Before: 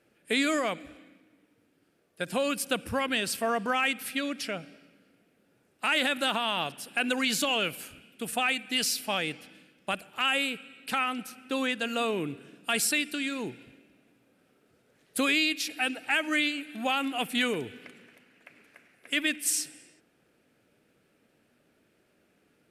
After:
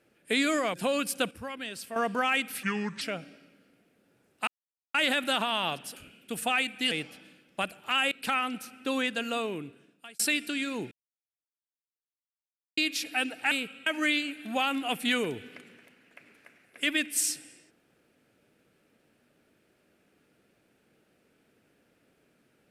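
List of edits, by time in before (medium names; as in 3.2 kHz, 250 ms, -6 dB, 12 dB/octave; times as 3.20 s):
0.74–2.25 s: delete
2.82–3.47 s: gain -9.5 dB
4.14–4.42 s: speed 73%
5.88 s: insert silence 0.47 s
6.90–7.87 s: delete
8.82–9.21 s: delete
10.41–10.76 s: move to 16.16 s
11.76–12.84 s: fade out
13.56–15.42 s: mute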